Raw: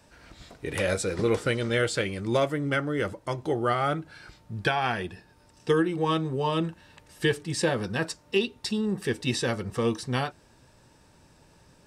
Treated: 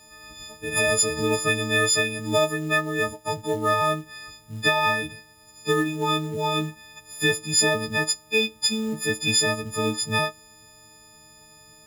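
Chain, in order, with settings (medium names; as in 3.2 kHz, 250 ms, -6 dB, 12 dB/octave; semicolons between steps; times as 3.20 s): partials quantised in pitch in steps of 6 st; companded quantiser 6-bit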